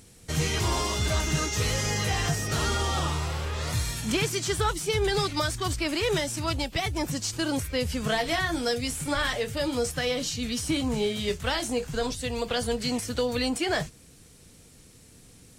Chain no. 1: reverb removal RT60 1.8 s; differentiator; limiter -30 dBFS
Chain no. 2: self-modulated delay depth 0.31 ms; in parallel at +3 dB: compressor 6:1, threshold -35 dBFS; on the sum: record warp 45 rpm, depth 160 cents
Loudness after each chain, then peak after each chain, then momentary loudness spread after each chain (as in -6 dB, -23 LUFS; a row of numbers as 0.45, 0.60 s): -39.5, -25.0 LUFS; -30.0, -12.0 dBFS; 7, 4 LU